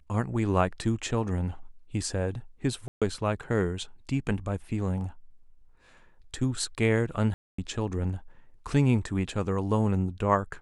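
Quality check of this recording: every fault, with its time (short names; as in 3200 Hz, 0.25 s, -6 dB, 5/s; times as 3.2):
2.88–3.02 gap 0.136 s
7.34–7.58 gap 0.244 s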